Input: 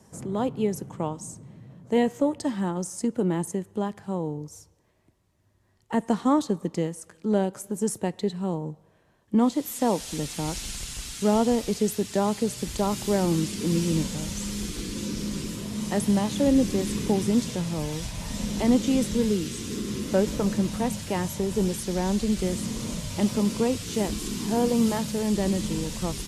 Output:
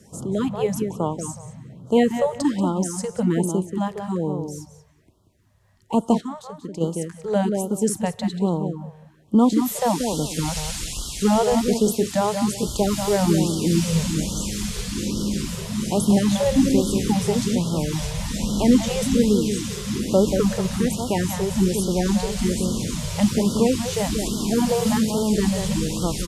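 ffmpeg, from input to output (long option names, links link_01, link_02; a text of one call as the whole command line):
ffmpeg -i in.wav -filter_complex "[0:a]asplit=2[link_01][link_02];[link_02]adelay=184,lowpass=frequency=3000:poles=1,volume=-6.5dB,asplit=2[link_03][link_04];[link_04]adelay=184,lowpass=frequency=3000:poles=1,volume=0.23,asplit=2[link_05][link_06];[link_06]adelay=184,lowpass=frequency=3000:poles=1,volume=0.23[link_07];[link_01][link_03][link_05][link_07]amix=inputs=4:normalize=0,asplit=3[link_08][link_09][link_10];[link_08]afade=type=out:start_time=6.2:duration=0.02[link_11];[link_09]acompressor=threshold=-35dB:ratio=4,afade=type=in:start_time=6.2:duration=0.02,afade=type=out:start_time=6.8:duration=0.02[link_12];[link_10]afade=type=in:start_time=6.8:duration=0.02[link_13];[link_11][link_12][link_13]amix=inputs=3:normalize=0,afftfilt=real='re*(1-between(b*sr/1024,260*pow(2100/260,0.5+0.5*sin(2*PI*1.2*pts/sr))/1.41,260*pow(2100/260,0.5+0.5*sin(2*PI*1.2*pts/sr))*1.41))':imag='im*(1-between(b*sr/1024,260*pow(2100/260,0.5+0.5*sin(2*PI*1.2*pts/sr))/1.41,260*pow(2100/260,0.5+0.5*sin(2*PI*1.2*pts/sr))*1.41))':win_size=1024:overlap=0.75,volume=5dB" out.wav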